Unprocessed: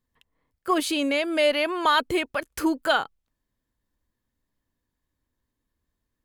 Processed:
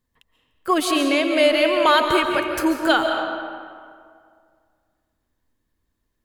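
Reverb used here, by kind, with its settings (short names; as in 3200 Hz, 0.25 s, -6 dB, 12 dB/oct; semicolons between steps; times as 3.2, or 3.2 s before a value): digital reverb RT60 2.1 s, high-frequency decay 0.6×, pre-delay 0.1 s, DRR 3.5 dB; gain +3.5 dB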